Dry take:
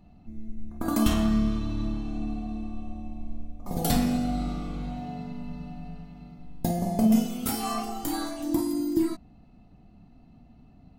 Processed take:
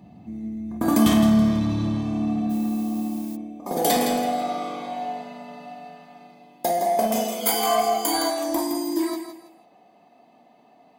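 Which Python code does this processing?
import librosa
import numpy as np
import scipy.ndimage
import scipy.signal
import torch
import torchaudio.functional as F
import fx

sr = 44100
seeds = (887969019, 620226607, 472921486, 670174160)

p1 = fx.notch_comb(x, sr, f0_hz=1400.0)
p2 = p1 + fx.echo_feedback(p1, sr, ms=164, feedback_pct=28, wet_db=-9.0, dry=0)
p3 = fx.filter_sweep_highpass(p2, sr, from_hz=110.0, to_hz=580.0, start_s=2.07, end_s=4.44, q=1.3)
p4 = np.clip(p3, -10.0 ** (-30.5 / 20.0), 10.0 ** (-30.5 / 20.0))
p5 = p3 + (p4 * librosa.db_to_amplitude(-4.0))
p6 = fx.dmg_noise_colour(p5, sr, seeds[0], colour='blue', level_db=-51.0, at=(2.49, 3.35), fade=0.02)
p7 = fx.ripple_eq(p6, sr, per_octave=1.8, db=12, at=(7.41, 8.3))
y = p7 * librosa.db_to_amplitude(5.0)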